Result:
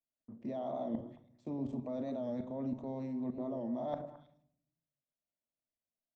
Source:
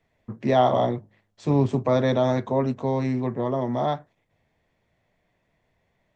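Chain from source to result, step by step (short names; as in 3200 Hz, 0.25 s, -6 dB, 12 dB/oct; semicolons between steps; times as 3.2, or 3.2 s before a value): gate with hold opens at -49 dBFS; fifteen-band EQ 250 Hz +12 dB, 630 Hz +9 dB, 1600 Hz -4 dB; level quantiser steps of 21 dB; limiter -16.5 dBFS, peak gain reduction 5 dB; reverse; compressor 16:1, threshold -36 dBFS, peak gain reduction 16.5 dB; reverse; delay with a stepping band-pass 0.108 s, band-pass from 450 Hz, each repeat 1.4 oct, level -7 dB; on a send at -11 dB: reverb RT60 0.65 s, pre-delay 3 ms; on the sum: record warp 45 rpm, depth 100 cents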